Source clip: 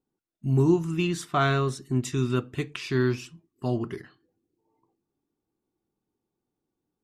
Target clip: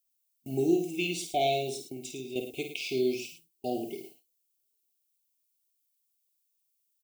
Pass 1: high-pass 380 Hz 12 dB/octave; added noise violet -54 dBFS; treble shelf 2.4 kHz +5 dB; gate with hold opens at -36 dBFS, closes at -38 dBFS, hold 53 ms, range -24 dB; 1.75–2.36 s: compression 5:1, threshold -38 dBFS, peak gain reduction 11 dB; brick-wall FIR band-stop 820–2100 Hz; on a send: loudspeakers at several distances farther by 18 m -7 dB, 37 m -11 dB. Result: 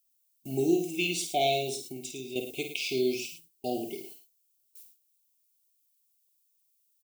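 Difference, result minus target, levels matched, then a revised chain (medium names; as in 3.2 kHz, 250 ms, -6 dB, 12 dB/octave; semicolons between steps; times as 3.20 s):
4 kHz band +2.5 dB
high-pass 380 Hz 12 dB/octave; added noise violet -54 dBFS; gate with hold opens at -36 dBFS, closes at -38 dBFS, hold 53 ms, range -24 dB; 1.75–2.36 s: compression 5:1, threshold -38 dBFS, peak gain reduction 11 dB; brick-wall FIR band-stop 820–2100 Hz; on a send: loudspeakers at several distances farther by 18 m -7 dB, 37 m -11 dB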